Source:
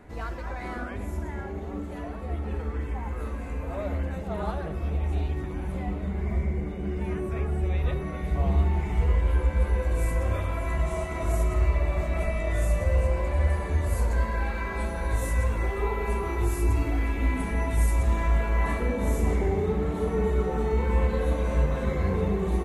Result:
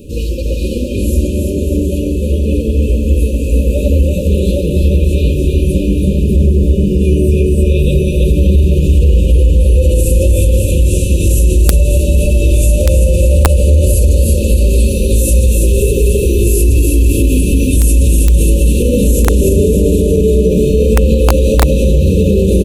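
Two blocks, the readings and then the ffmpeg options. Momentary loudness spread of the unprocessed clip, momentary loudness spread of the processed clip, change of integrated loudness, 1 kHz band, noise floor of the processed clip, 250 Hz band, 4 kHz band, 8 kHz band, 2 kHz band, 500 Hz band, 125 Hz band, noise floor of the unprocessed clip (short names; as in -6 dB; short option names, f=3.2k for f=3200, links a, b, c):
9 LU, 4 LU, +16.0 dB, +1.5 dB, -16 dBFS, +18.0 dB, +20.0 dB, +23.5 dB, +6.5 dB, +16.5 dB, +16.5 dB, -35 dBFS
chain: -af "highshelf=f=8.2k:g=11.5,aecho=1:1:330|594|805.2|974.2|1109:0.631|0.398|0.251|0.158|0.1,afftfilt=real='re*(1-between(b*sr/4096,600,2400))':imag='im*(1-between(b*sr/4096,600,2400))':win_size=4096:overlap=0.75,aeval=exprs='(mod(3.76*val(0)+1,2)-1)/3.76':c=same,alimiter=level_in=19dB:limit=-1dB:release=50:level=0:latency=1,volume=-1dB"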